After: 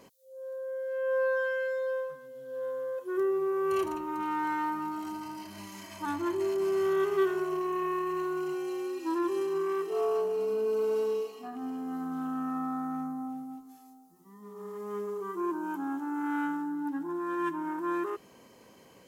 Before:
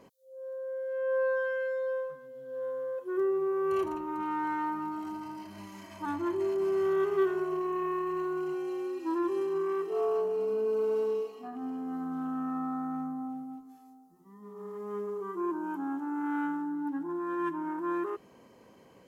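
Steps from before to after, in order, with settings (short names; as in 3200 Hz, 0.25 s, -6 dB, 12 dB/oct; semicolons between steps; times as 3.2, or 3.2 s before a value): high shelf 2600 Hz +9.5 dB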